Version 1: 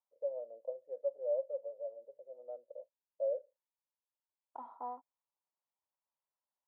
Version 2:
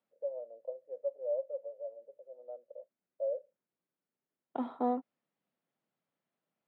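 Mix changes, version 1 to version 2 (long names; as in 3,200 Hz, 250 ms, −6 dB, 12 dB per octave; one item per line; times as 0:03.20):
second voice: remove resonant band-pass 950 Hz, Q 5.6
master: add high-pass filter 170 Hz 24 dB per octave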